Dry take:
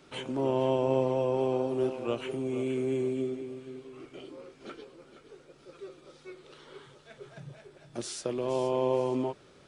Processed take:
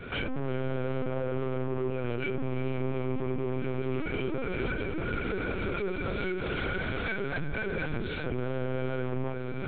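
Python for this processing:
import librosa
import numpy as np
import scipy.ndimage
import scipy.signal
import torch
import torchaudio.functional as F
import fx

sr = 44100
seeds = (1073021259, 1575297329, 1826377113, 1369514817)

p1 = fx.recorder_agc(x, sr, target_db=-21.5, rise_db_per_s=36.0, max_gain_db=30)
p2 = fx.highpass(p1, sr, hz=100.0, slope=6)
p3 = fx.peak_eq(p2, sr, hz=210.0, db=13.5, octaves=1.4)
p4 = fx.hum_notches(p3, sr, base_hz=60, count=9)
p5 = 10.0 ** (-20.5 / 20.0) * (np.abs((p4 / 10.0 ** (-20.5 / 20.0) + 3.0) % 4.0 - 2.0) - 1.0)
p6 = p4 + (p5 * librosa.db_to_amplitude(-7.5))
p7 = fx.small_body(p6, sr, hz=(1500.0, 2300.0), ring_ms=30, db=18)
p8 = 10.0 ** (-20.5 / 20.0) * np.tanh(p7 / 10.0 ** (-20.5 / 20.0))
p9 = p8 + fx.echo_filtered(p8, sr, ms=364, feedback_pct=29, hz=1400.0, wet_db=-7.5, dry=0)
p10 = fx.lpc_vocoder(p9, sr, seeds[0], excitation='pitch_kept', order=10)
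p11 = fx.env_flatten(p10, sr, amount_pct=50)
y = p11 * librosa.db_to_amplitude(-8.5)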